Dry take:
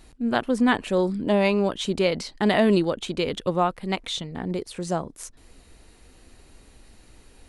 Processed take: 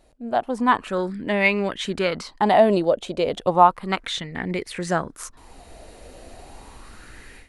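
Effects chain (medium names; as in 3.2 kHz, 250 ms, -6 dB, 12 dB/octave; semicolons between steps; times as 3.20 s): level rider gain up to 16 dB; sweeping bell 0.33 Hz 590–2100 Hz +15 dB; trim -9.5 dB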